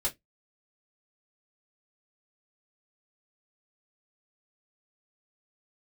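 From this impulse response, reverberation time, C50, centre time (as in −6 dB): 0.15 s, 21.0 dB, 12 ms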